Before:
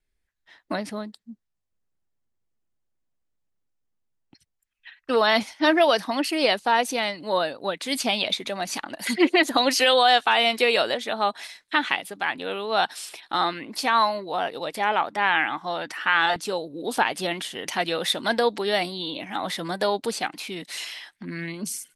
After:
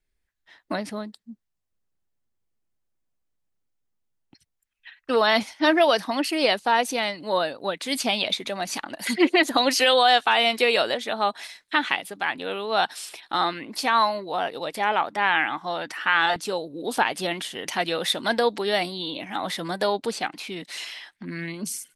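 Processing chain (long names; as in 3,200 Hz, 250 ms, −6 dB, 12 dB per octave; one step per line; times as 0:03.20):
0:19.92–0:21.26: high-shelf EQ 8,500 Hz −7.5 dB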